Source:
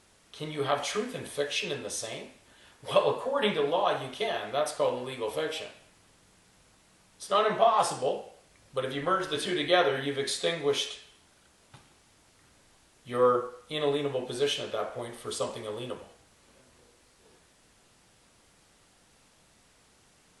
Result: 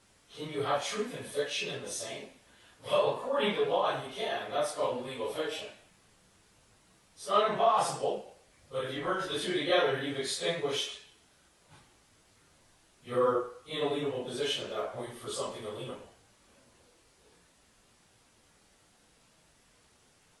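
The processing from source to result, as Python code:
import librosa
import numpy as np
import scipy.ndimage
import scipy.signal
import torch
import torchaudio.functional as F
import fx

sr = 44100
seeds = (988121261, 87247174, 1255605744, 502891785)

y = fx.phase_scramble(x, sr, seeds[0], window_ms=100)
y = y * librosa.db_to_amplitude(-2.5)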